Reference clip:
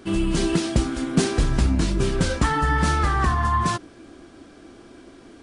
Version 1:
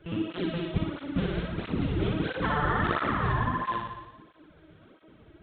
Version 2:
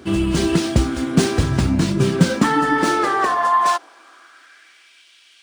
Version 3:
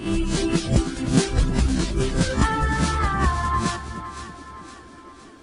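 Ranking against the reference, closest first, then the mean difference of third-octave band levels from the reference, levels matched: 3, 2, 1; 4.0, 5.5, 8.5 decibels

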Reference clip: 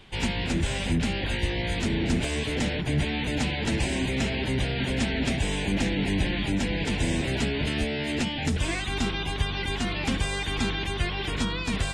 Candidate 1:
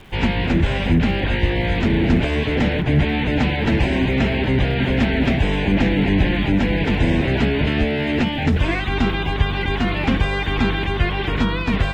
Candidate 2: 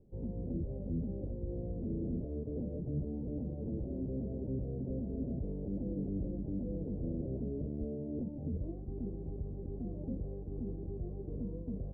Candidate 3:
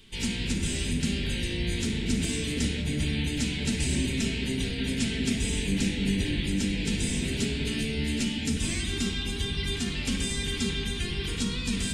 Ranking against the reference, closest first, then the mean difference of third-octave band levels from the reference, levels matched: 1, 3, 2; 4.0, 6.0, 18.5 decibels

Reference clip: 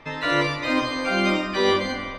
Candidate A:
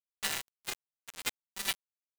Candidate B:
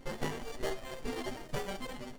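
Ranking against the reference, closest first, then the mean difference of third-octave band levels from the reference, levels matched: B, A; 9.5, 22.5 decibels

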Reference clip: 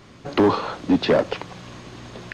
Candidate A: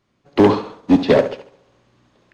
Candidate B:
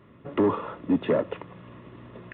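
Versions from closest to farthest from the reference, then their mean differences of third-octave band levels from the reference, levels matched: B, A; 5.0, 12.0 decibels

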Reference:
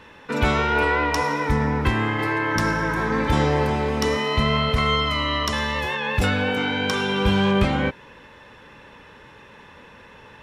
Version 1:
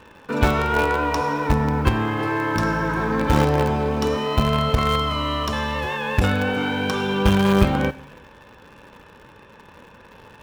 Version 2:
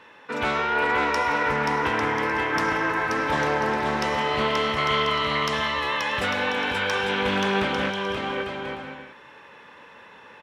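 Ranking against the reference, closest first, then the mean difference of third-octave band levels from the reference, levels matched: 1, 2; 3.0, 5.0 decibels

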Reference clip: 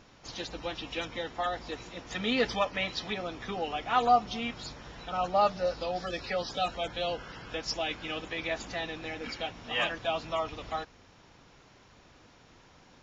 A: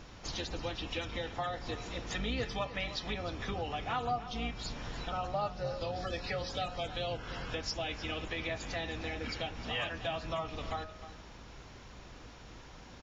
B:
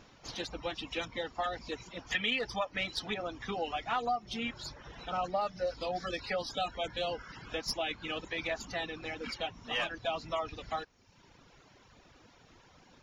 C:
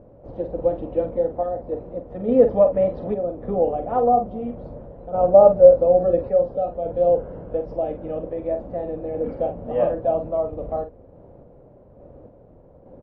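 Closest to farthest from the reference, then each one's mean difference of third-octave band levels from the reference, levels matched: B, A, C; 2.5, 5.0, 11.5 decibels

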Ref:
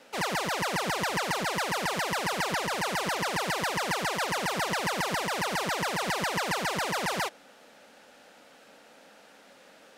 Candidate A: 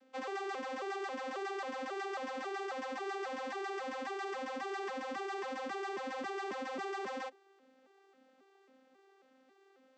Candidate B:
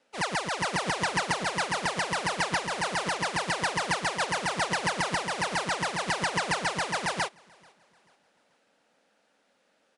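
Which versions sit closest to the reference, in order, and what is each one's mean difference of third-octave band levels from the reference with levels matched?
B, A; 6.5, 13.0 decibels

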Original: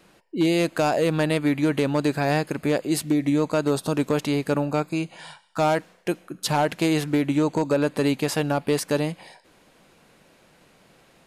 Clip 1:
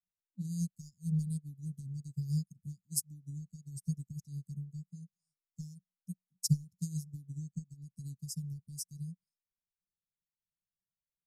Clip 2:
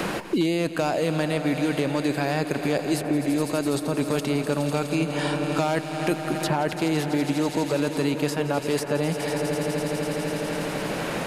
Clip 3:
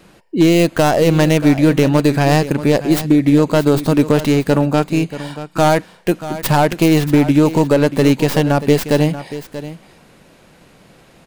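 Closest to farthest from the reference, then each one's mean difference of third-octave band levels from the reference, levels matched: 3, 2, 1; 3.5, 10.0, 16.0 decibels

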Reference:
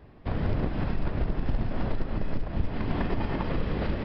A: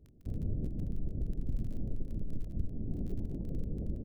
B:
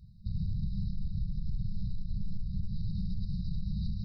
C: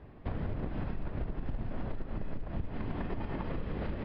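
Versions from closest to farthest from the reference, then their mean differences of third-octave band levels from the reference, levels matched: C, A, B; 2.0, 12.0, 18.0 decibels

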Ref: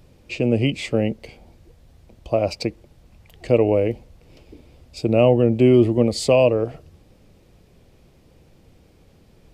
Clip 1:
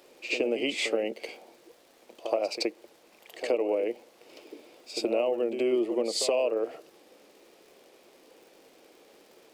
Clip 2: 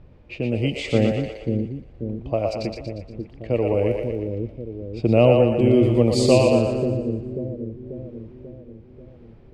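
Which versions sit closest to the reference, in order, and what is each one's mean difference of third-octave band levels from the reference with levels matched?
2, 1; 6.5, 9.5 decibels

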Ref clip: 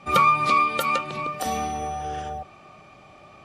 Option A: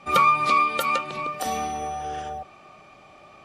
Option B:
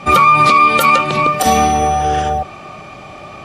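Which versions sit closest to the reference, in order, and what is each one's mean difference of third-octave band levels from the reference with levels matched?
A, B; 1.0, 3.0 decibels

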